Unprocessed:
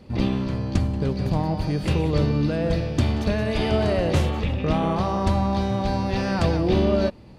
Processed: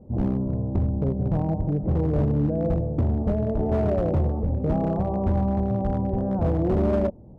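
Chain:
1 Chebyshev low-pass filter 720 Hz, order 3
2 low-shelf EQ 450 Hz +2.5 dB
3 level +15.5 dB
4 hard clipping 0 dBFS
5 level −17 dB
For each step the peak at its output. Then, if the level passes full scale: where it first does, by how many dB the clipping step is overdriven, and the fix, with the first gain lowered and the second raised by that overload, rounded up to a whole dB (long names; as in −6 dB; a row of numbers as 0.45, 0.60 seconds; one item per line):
−7.5, −5.5, +10.0, 0.0, −17.0 dBFS
step 3, 10.0 dB
step 3 +5.5 dB, step 5 −7 dB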